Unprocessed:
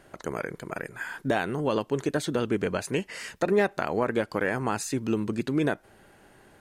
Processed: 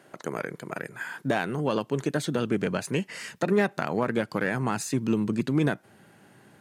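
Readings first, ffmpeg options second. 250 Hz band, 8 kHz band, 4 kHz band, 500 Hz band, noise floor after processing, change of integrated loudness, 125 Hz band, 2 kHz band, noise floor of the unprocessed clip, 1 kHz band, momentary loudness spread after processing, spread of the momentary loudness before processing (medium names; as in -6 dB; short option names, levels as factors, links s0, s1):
+1.5 dB, 0.0 dB, +0.5 dB, -1.0 dB, -56 dBFS, +0.5 dB, +3.0 dB, 0.0 dB, -57 dBFS, -0.5 dB, 10 LU, 10 LU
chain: -af "asubboost=boost=3:cutoff=220,aeval=exprs='0.282*(cos(1*acos(clip(val(0)/0.282,-1,1)))-cos(1*PI/2))+0.0112*(cos(6*acos(clip(val(0)/0.282,-1,1)))-cos(6*PI/2))':c=same,highpass=f=130:w=0.5412,highpass=f=130:w=1.3066"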